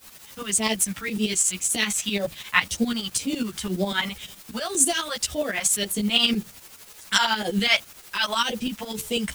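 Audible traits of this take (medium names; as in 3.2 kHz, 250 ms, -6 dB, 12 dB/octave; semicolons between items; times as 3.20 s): phasing stages 2, 1.9 Hz, lowest notch 350–1500 Hz; a quantiser's noise floor 8-bit, dither triangular; tremolo saw up 12 Hz, depth 80%; a shimmering, thickened sound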